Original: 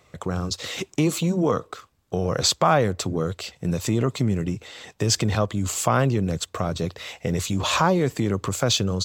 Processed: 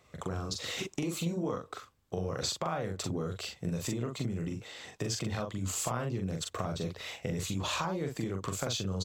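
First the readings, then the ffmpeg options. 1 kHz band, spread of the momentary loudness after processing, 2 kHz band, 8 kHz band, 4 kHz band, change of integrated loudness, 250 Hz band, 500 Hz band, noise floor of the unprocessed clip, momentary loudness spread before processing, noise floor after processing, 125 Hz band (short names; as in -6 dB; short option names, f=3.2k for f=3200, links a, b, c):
-13.0 dB, 6 LU, -11.0 dB, -10.0 dB, -10.5 dB, -11.5 dB, -11.0 dB, -12.0 dB, -62 dBFS, 10 LU, -63 dBFS, -11.0 dB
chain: -filter_complex "[0:a]acompressor=threshold=-25dB:ratio=6,asplit=2[a][b];[b]adelay=42,volume=-4dB[c];[a][c]amix=inputs=2:normalize=0,volume=-6.5dB"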